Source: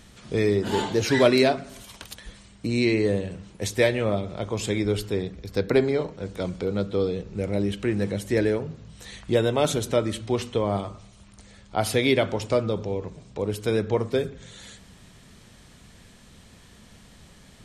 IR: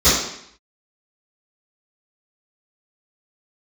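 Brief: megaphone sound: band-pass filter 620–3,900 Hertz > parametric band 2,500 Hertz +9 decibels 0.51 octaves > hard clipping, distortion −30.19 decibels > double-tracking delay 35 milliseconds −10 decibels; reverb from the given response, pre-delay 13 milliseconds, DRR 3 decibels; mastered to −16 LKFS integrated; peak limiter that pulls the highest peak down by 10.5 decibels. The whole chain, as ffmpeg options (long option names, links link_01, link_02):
-filter_complex "[0:a]alimiter=limit=-15.5dB:level=0:latency=1,asplit=2[link_01][link_02];[1:a]atrim=start_sample=2205,adelay=13[link_03];[link_02][link_03]afir=irnorm=-1:irlink=0,volume=-26dB[link_04];[link_01][link_04]amix=inputs=2:normalize=0,highpass=620,lowpass=3900,equalizer=frequency=2500:width_type=o:width=0.51:gain=9,asoftclip=type=hard:threshold=-16.5dB,asplit=2[link_05][link_06];[link_06]adelay=35,volume=-10dB[link_07];[link_05][link_07]amix=inputs=2:normalize=0,volume=13.5dB"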